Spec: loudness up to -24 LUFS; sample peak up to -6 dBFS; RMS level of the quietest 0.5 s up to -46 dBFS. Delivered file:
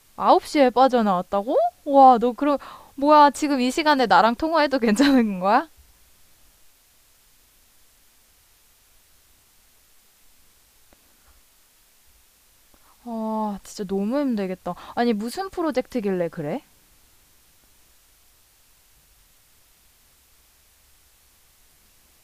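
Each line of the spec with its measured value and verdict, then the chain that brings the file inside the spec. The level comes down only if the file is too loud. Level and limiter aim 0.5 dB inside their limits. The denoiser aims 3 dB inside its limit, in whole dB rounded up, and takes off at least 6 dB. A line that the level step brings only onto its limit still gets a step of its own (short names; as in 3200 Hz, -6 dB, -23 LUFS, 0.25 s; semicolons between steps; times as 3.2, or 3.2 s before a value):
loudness -20.5 LUFS: fail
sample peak -3.5 dBFS: fail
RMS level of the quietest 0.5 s -58 dBFS: OK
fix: gain -4 dB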